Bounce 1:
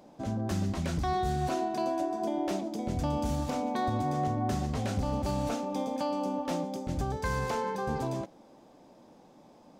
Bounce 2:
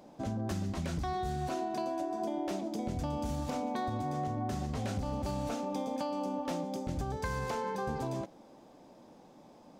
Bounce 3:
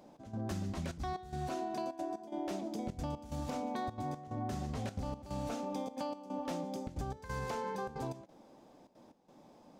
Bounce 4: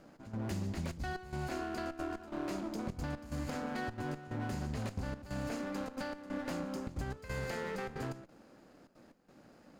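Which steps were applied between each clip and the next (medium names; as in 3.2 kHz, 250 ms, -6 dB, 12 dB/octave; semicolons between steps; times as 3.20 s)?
compression, threshold -31 dBFS, peak gain reduction 6 dB
trance gate "xx..xxxxxxx." 181 bpm -12 dB; trim -3 dB
comb filter that takes the minimum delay 0.44 ms; trim +1 dB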